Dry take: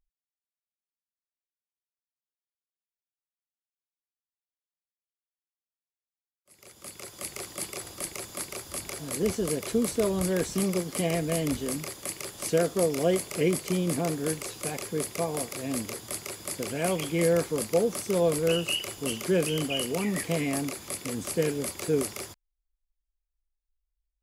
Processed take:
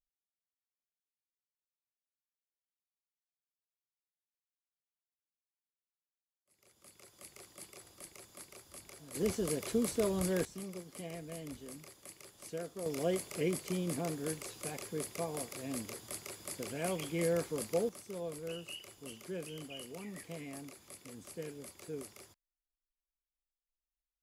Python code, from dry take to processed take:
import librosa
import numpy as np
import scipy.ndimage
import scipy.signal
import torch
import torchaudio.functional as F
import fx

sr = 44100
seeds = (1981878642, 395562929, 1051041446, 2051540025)

y = fx.gain(x, sr, db=fx.steps((0.0, -16.0), (9.15, -6.0), (10.45, -17.0), (12.86, -8.5), (17.89, -17.0)))